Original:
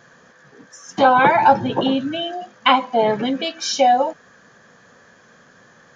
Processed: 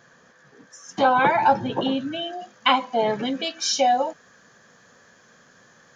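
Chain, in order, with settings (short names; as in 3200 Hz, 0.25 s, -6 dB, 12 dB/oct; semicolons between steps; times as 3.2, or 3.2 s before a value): high shelf 4500 Hz +3 dB, from 2.39 s +8.5 dB; gain -5 dB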